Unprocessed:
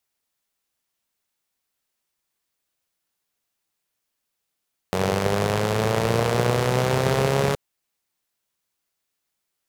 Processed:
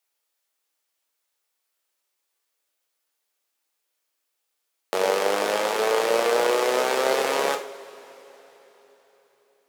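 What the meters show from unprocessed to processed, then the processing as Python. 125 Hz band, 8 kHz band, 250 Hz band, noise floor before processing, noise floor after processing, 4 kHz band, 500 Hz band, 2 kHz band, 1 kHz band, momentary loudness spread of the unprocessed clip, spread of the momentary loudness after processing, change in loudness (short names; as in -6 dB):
under -25 dB, +1.5 dB, -7.5 dB, -80 dBFS, -78 dBFS, +1.5 dB, +1.0 dB, +1.5 dB, +1.5 dB, 5 LU, 9 LU, 0.0 dB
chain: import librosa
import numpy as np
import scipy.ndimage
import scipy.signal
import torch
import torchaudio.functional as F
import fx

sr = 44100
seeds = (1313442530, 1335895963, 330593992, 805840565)

y = scipy.signal.sosfilt(scipy.signal.butter(4, 340.0, 'highpass', fs=sr, output='sos'), x)
y = fx.rev_double_slope(y, sr, seeds[0], early_s=0.41, late_s=4.1, knee_db=-21, drr_db=3.5)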